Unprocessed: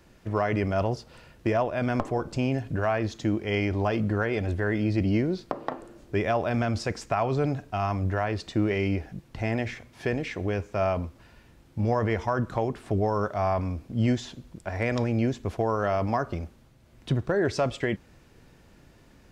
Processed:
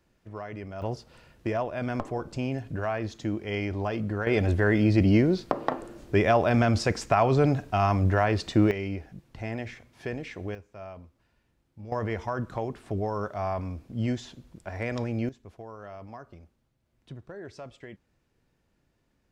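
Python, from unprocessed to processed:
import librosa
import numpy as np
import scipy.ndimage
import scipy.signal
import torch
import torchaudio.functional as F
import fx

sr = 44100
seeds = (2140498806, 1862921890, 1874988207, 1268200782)

y = fx.gain(x, sr, db=fx.steps((0.0, -12.5), (0.82, -4.0), (4.27, 4.0), (8.71, -6.0), (10.55, -16.5), (11.92, -4.5), (15.29, -17.0)))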